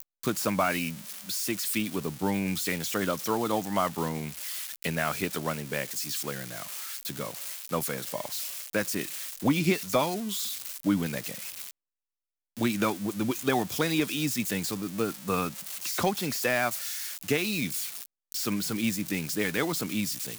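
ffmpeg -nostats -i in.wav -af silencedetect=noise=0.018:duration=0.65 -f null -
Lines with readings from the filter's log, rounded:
silence_start: 11.71
silence_end: 12.57 | silence_duration: 0.86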